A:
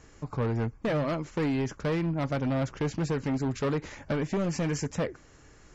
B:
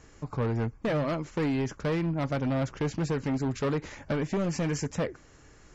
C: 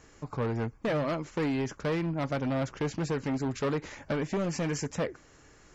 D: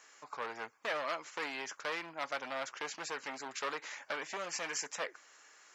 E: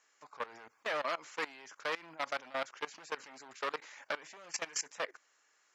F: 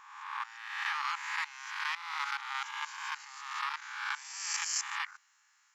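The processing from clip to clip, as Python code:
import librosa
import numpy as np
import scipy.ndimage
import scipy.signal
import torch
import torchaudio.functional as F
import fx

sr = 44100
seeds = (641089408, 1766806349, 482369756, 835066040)

y1 = x
y2 = fx.low_shelf(y1, sr, hz=170.0, db=-5.5)
y3 = scipy.signal.sosfilt(scipy.signal.butter(2, 980.0, 'highpass', fs=sr, output='sos'), y2)
y3 = y3 * librosa.db_to_amplitude(1.0)
y4 = fx.level_steps(y3, sr, step_db=19)
y4 = y4 * librosa.db_to_amplitude(4.0)
y5 = fx.spec_swells(y4, sr, rise_s=1.11)
y5 = fx.brickwall_highpass(y5, sr, low_hz=790.0)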